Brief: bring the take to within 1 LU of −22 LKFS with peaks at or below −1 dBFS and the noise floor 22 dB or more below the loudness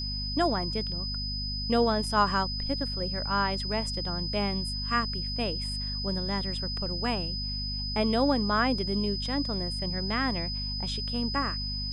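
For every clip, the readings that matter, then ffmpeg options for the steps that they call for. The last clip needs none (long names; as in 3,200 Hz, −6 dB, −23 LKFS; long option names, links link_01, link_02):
mains hum 50 Hz; hum harmonics up to 250 Hz; level of the hum −33 dBFS; interfering tone 5,000 Hz; level of the tone −33 dBFS; integrated loudness −28.5 LKFS; sample peak −11.5 dBFS; target loudness −22.0 LKFS
→ -af "bandreject=frequency=50:width_type=h:width=4,bandreject=frequency=100:width_type=h:width=4,bandreject=frequency=150:width_type=h:width=4,bandreject=frequency=200:width_type=h:width=4,bandreject=frequency=250:width_type=h:width=4"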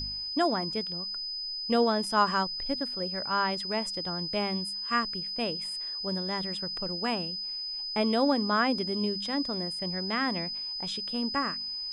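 mains hum none found; interfering tone 5,000 Hz; level of the tone −33 dBFS
→ -af "bandreject=frequency=5000:width=30"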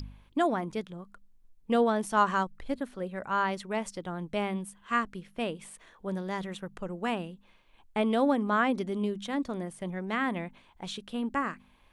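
interfering tone none found; integrated loudness −31.0 LKFS; sample peak −11.5 dBFS; target loudness −22.0 LKFS
→ -af "volume=9dB"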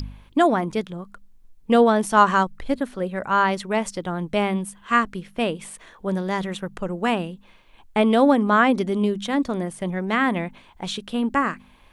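integrated loudness −22.0 LKFS; sample peak −2.5 dBFS; background noise floor −53 dBFS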